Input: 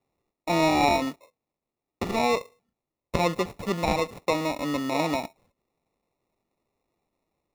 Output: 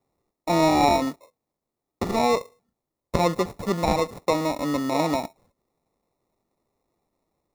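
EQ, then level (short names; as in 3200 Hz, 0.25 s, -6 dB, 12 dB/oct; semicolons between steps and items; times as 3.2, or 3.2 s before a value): bell 2700 Hz -8.5 dB 0.64 oct; +3.0 dB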